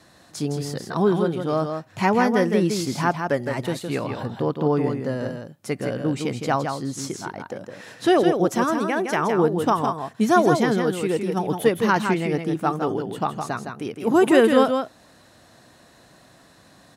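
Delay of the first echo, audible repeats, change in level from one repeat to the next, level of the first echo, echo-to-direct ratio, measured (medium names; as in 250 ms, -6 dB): 162 ms, 1, no regular repeats, -6.0 dB, -6.0 dB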